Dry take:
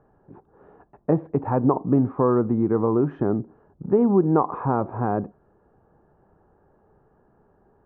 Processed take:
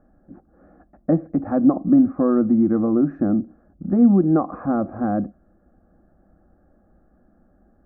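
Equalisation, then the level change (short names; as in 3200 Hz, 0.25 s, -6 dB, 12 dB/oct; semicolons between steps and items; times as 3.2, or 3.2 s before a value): low shelf 390 Hz +11.5 dB; fixed phaser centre 630 Hz, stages 8; -1.0 dB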